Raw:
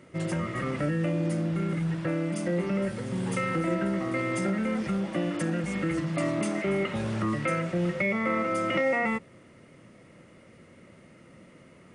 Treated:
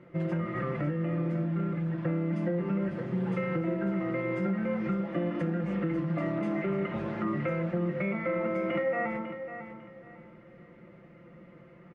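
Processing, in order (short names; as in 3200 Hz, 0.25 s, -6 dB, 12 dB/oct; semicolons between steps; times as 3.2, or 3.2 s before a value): LPF 1900 Hz 12 dB/oct; comb 5.8 ms, depth 63%; de-hum 111.4 Hz, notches 35; compressor, threshold -25 dBFS, peak gain reduction 6 dB; feedback echo 0.549 s, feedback 27%, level -10.5 dB; gain -1.5 dB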